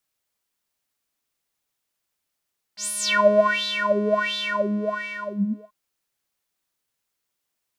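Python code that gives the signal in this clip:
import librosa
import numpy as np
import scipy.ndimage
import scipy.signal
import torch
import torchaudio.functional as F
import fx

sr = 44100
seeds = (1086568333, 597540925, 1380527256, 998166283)

y = fx.sub_patch_wobble(sr, seeds[0], note=56, wave='square', wave2='sine', interval_st=12, level2_db=-15.5, sub_db=-29, noise_db=-29.5, kind='bandpass', cutoff_hz=520.0, q=9.3, env_oct=3.0, env_decay_s=0.74, env_sustain_pct=40, attack_ms=95.0, decay_s=0.88, sustain_db=-6.0, release_s=1.41, note_s=1.53, lfo_hz=1.4, wobble_oct=1.7)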